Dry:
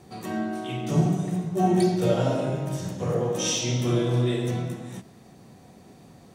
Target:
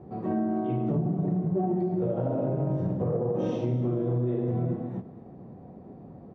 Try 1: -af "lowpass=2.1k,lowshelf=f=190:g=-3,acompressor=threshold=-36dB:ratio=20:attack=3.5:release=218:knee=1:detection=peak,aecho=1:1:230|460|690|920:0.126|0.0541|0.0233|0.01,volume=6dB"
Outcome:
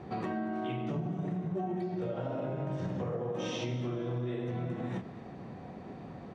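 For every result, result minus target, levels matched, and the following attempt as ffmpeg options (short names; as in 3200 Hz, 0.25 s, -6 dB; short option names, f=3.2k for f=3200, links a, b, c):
2000 Hz band +15.5 dB; compressor: peak gain reduction +8.5 dB
-af "lowpass=660,lowshelf=f=190:g=-3,acompressor=threshold=-36dB:ratio=20:attack=3.5:release=218:knee=1:detection=peak,aecho=1:1:230|460|690|920:0.126|0.0541|0.0233|0.01,volume=6dB"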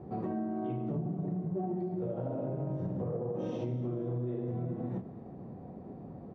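compressor: peak gain reduction +7.5 dB
-af "lowpass=660,lowshelf=f=190:g=-3,acompressor=threshold=-28dB:ratio=20:attack=3.5:release=218:knee=1:detection=peak,aecho=1:1:230|460|690|920:0.126|0.0541|0.0233|0.01,volume=6dB"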